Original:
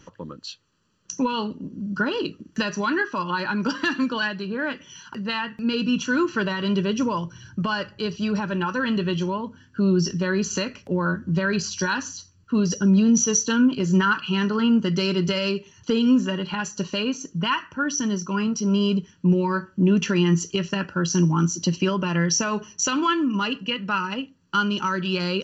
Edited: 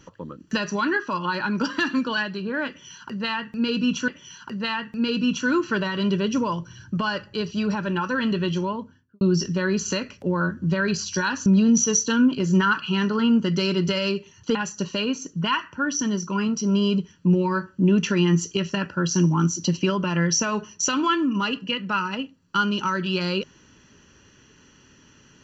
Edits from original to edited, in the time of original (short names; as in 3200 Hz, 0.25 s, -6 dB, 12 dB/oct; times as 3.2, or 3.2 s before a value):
0.4–2.45 cut
4.73–6.13 loop, 2 plays
9.35–9.86 studio fade out
12.11–12.86 cut
15.95–16.54 cut